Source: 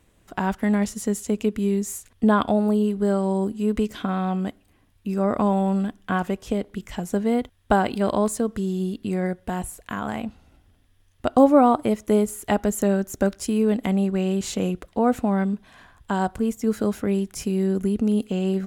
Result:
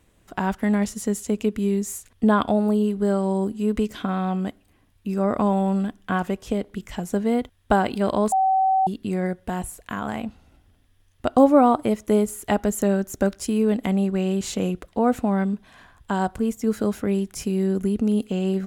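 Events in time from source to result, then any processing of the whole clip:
8.32–8.87 bleep 764 Hz -16 dBFS

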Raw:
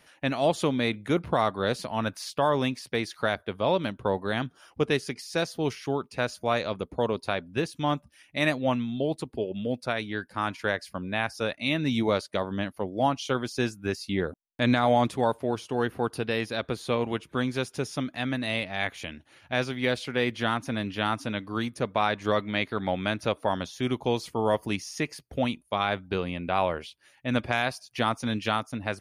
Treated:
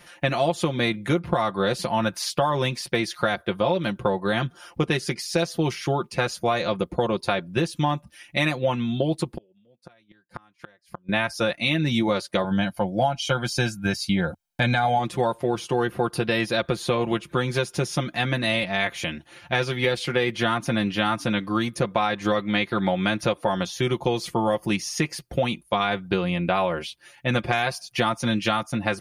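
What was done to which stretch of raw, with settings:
9.37–11.09 flipped gate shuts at -26 dBFS, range -38 dB
12.44–14.99 comb 1.3 ms, depth 63%
whole clip: bell 86 Hz +6 dB 0.7 oct; comb 5.7 ms, depth 75%; compressor, threshold -26 dBFS; gain +7 dB

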